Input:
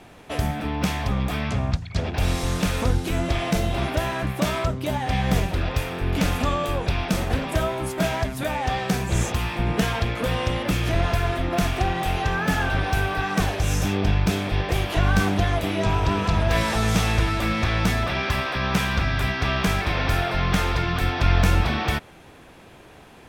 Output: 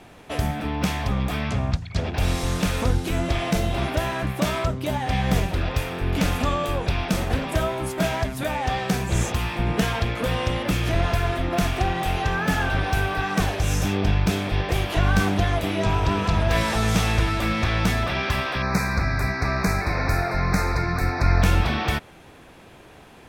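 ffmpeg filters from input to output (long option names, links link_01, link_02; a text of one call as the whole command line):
ffmpeg -i in.wav -filter_complex "[0:a]asettb=1/sr,asplit=3[link_01][link_02][link_03];[link_01]atrim=end=18.624[link_04];[link_02]atrim=start=18.62:end=21.42,asetpts=PTS-STARTPTS,afade=type=in:duration=0.004:curve=qsin,afade=type=out:start_time=2.796:duration=0.004:curve=qsin,asuperstop=centerf=3100:order=8:qfactor=2.1[link_05];[link_03]atrim=start=21.416[link_06];[link_04][link_05]acrossfade=duration=0.004:curve1=hsin:curve2=qsin[link_07];[link_07][link_06]acrossfade=duration=0.004:curve1=qsin:curve2=hsin" out.wav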